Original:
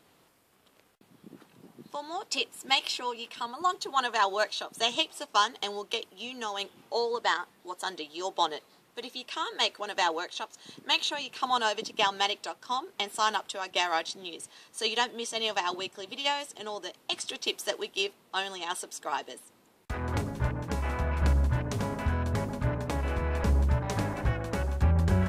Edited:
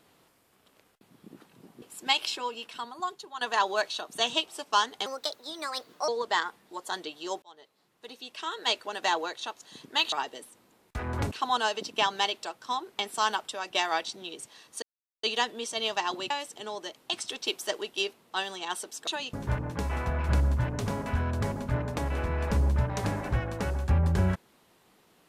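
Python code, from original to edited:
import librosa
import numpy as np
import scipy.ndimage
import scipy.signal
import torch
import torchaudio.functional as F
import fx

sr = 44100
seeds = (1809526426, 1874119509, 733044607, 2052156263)

y = fx.edit(x, sr, fx.cut(start_s=1.82, length_s=0.62),
    fx.fade_out_to(start_s=3.19, length_s=0.84, floor_db=-15.0),
    fx.speed_span(start_s=5.68, length_s=1.34, speed=1.31),
    fx.fade_in_span(start_s=8.36, length_s=1.3),
    fx.swap(start_s=11.06, length_s=0.26, other_s=19.07, other_length_s=1.19),
    fx.insert_silence(at_s=14.83, length_s=0.41),
    fx.cut(start_s=15.9, length_s=0.4), tone=tone)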